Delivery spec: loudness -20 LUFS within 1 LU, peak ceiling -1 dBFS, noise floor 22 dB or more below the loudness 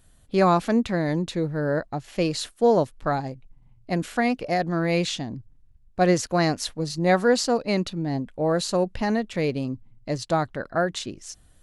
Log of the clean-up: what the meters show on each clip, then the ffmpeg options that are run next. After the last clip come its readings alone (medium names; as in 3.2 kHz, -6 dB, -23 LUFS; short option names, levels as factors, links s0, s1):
loudness -24.5 LUFS; peak level -7.5 dBFS; loudness target -20.0 LUFS
-> -af "volume=1.68"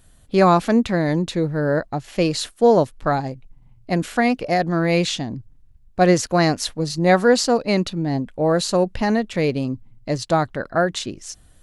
loudness -20.0 LUFS; peak level -3.0 dBFS; noise floor -52 dBFS